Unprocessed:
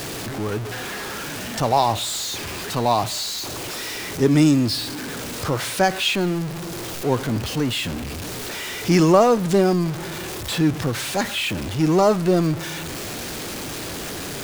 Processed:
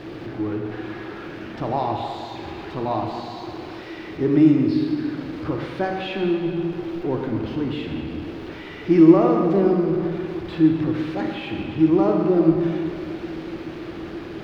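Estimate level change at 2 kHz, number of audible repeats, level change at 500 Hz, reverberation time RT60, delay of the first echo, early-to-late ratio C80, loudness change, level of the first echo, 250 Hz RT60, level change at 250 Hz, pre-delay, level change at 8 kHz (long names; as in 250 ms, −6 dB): −7.5 dB, no echo audible, −1.0 dB, 2.5 s, no echo audible, 3.0 dB, +0.5 dB, no echo audible, 2.4 s, +3.0 dB, 24 ms, below −25 dB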